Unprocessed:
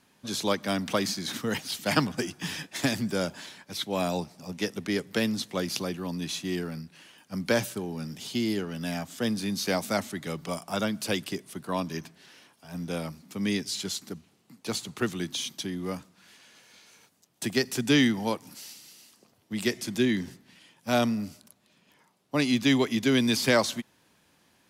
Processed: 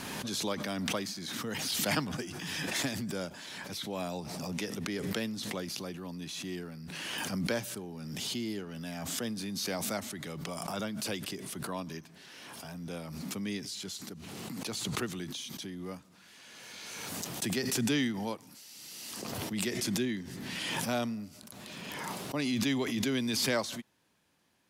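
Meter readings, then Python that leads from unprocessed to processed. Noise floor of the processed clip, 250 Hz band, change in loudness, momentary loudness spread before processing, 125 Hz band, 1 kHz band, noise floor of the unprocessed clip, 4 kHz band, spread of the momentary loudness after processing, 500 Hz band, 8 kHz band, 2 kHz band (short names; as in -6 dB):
-56 dBFS, -6.5 dB, -6.0 dB, 14 LU, -5.0 dB, -6.0 dB, -65 dBFS, -4.0 dB, 13 LU, -7.5 dB, -1.0 dB, -5.5 dB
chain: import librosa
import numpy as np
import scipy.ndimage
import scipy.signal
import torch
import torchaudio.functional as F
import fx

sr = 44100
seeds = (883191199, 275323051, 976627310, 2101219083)

y = fx.pre_swell(x, sr, db_per_s=21.0)
y = y * 10.0 ** (-8.5 / 20.0)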